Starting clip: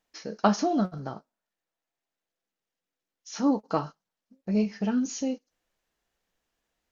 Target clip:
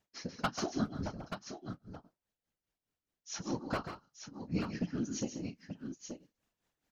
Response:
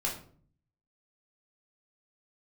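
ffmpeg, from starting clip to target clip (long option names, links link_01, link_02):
-filter_complex "[0:a]equalizer=frequency=190:width_type=o:width=0.97:gain=8,acrossover=split=1200[link_01][link_02];[link_01]acompressor=threshold=-28dB:ratio=16[link_03];[link_03][link_02]amix=inputs=2:normalize=0,tremolo=f=4.8:d=0.95,aeval=exprs='0.075*(abs(mod(val(0)/0.075+3,4)-2)-1)':channel_layout=same,aecho=1:1:138|175|881:0.355|0.158|0.398,afftfilt=real='hypot(re,im)*cos(2*PI*random(0))':imag='hypot(re,im)*sin(2*PI*random(1))':win_size=512:overlap=0.75,volume=5dB"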